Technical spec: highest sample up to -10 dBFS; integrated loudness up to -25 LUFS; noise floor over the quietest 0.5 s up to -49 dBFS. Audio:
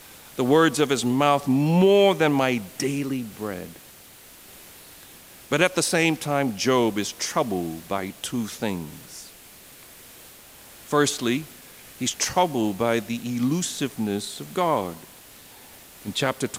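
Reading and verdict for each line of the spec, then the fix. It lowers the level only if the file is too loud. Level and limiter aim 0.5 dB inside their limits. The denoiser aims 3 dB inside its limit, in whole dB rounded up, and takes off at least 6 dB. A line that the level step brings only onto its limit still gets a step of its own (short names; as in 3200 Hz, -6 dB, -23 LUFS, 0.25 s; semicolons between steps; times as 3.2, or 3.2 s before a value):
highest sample -4.0 dBFS: fail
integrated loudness -23.5 LUFS: fail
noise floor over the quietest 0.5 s -48 dBFS: fail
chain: gain -2 dB; limiter -10.5 dBFS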